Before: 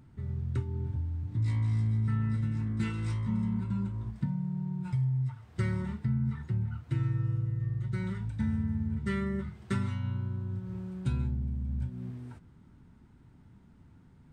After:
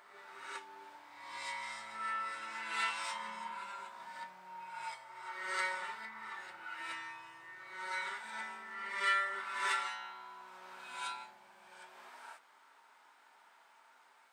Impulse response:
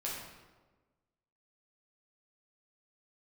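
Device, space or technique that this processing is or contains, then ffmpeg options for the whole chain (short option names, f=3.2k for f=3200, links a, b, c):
ghost voice: -filter_complex "[0:a]areverse[a];[1:a]atrim=start_sample=2205[b];[a][b]afir=irnorm=-1:irlink=0,areverse,highpass=f=720:w=0.5412,highpass=f=720:w=1.3066,volume=8dB"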